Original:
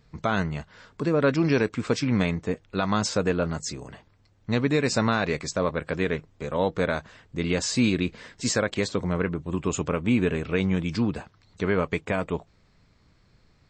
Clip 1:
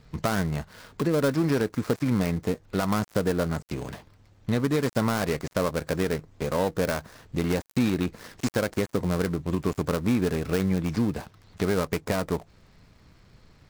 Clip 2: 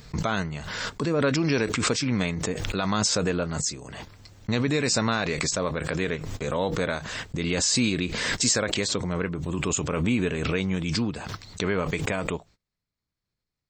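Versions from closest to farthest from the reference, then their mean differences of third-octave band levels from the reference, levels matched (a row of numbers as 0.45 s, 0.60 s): 2, 1; 5.0 dB, 7.0 dB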